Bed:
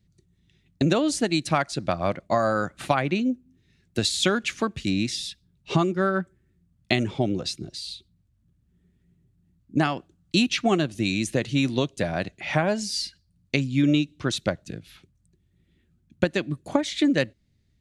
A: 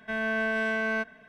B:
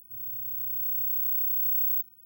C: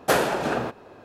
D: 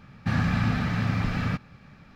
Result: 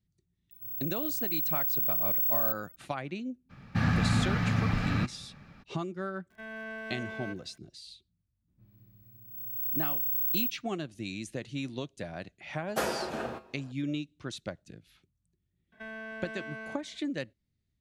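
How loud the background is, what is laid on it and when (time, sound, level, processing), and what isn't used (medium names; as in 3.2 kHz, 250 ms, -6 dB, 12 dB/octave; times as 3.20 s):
bed -13 dB
0.51 s: add B -1.5 dB + peaking EQ 1.2 kHz -4.5 dB 0.27 oct
3.49 s: add D -2 dB, fades 0.02 s
6.30 s: add A -12.5 dB + crackle 180 per s -43 dBFS
8.48 s: add B -1 dB + level-controlled noise filter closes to 1.7 kHz, open at -25.5 dBFS
12.68 s: add C -3 dB + feedback comb 73 Hz, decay 0.25 s, harmonics odd, mix 70%
15.72 s: add A -8.5 dB + compression 3:1, threshold -31 dBFS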